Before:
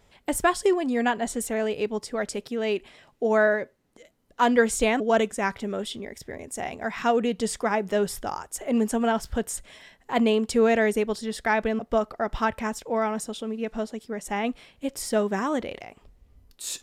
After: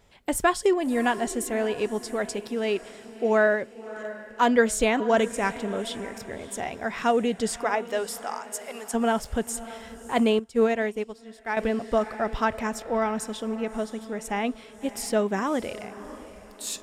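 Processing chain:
0:07.63–0:08.93: high-pass filter 410 Hz → 1,100 Hz 12 dB per octave
feedback delay with all-pass diffusion 621 ms, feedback 41%, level −15 dB
0:10.39–0:11.57: expander for the loud parts 2.5 to 1, over −29 dBFS

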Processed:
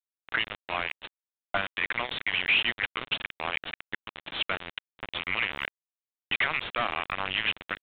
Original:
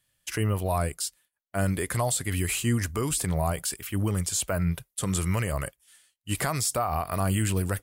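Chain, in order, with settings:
hum removal 54.94 Hz, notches 9
envelope filter 670–2,600 Hz, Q 2.5, up, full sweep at −26 dBFS
log-companded quantiser 2 bits
downsampling to 8,000 Hz
level +6 dB

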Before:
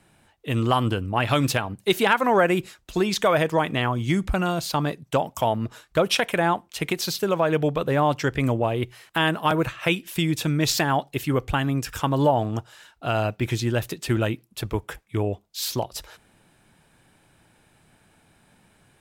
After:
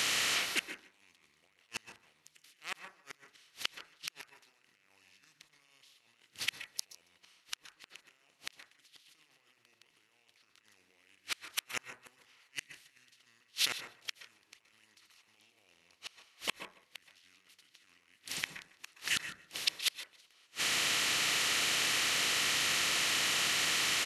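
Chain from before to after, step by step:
compressor on every frequency bin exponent 0.4
meter weighting curve D
harmonic generator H 2 −18 dB, 7 −39 dB, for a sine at 9 dBFS
compressor whose output falls as the input rises −16 dBFS, ratio −0.5
speed change −21%
gate with flip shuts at −8 dBFS, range −40 dB
first-order pre-emphasis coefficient 0.9
slap from a distant wall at 26 metres, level −17 dB
convolution reverb RT60 0.30 s, pre-delay 117 ms, DRR 8.5 dB

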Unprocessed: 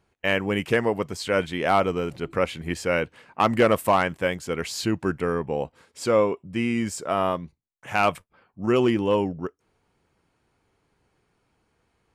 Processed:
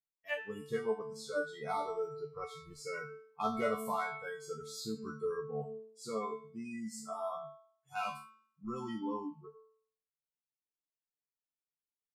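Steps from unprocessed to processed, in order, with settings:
resonators tuned to a chord D3 fifth, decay 0.42 s
noise reduction from a noise print of the clip's start 29 dB
hum removal 220.2 Hz, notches 36
level +2.5 dB

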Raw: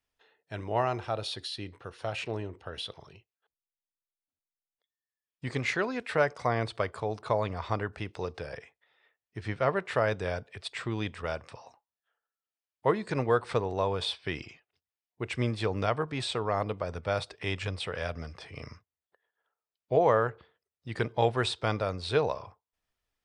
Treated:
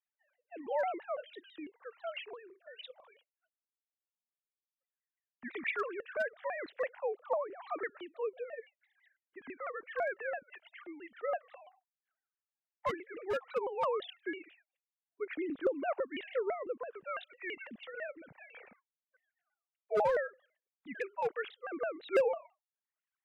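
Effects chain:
three sine waves on the formant tracks
parametric band 470 Hz +3 dB 0.21 octaves
rotating-speaker cabinet horn 0.85 Hz
parametric band 1,700 Hz +5 dB 0.26 octaves
hard clipping −20 dBFS, distortion −13 dB
flanger 0.13 Hz, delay 0.1 ms, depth 1.5 ms, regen −30%
pitch modulation by a square or saw wave saw down 6 Hz, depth 250 cents

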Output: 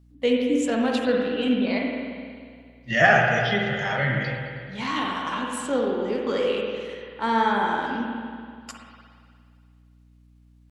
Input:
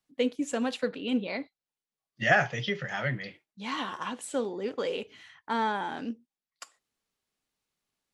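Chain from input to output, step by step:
tempo change 0.76×
spring reverb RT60 2.1 s, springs 48/58 ms, chirp 60 ms, DRR −0.5 dB
mains hum 60 Hz, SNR 29 dB
level +4 dB

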